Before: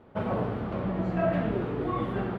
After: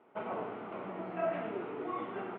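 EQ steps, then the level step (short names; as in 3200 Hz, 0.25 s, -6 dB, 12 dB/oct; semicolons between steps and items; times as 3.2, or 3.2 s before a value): air absorption 100 m; speaker cabinet 490–2800 Hz, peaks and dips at 540 Hz -9 dB, 780 Hz -3 dB, 1100 Hz -4 dB, 1700 Hz -8 dB; 0.0 dB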